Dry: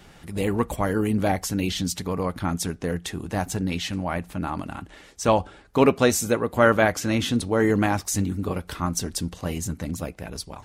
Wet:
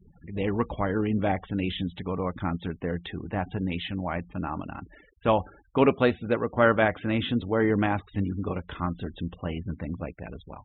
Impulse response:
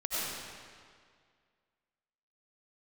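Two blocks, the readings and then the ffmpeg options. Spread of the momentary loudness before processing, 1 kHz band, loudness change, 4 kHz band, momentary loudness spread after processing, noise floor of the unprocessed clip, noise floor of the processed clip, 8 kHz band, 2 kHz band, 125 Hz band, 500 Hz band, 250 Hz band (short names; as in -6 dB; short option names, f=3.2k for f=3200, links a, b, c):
11 LU, -3.0 dB, -3.5 dB, -6.0 dB, 12 LU, -50 dBFS, -57 dBFS, under -40 dB, -3.0 dB, -3.0 dB, -3.0 dB, -3.0 dB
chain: -af "aresample=8000,aresample=44100,afftfilt=real='re*gte(hypot(re,im),0.01)':imag='im*gte(hypot(re,im),0.01)':win_size=1024:overlap=0.75,volume=-3dB"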